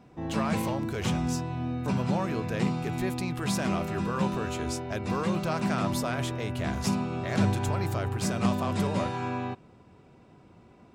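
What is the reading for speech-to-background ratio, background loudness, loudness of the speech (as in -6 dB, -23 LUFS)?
-4.0 dB, -31.0 LUFS, -35.0 LUFS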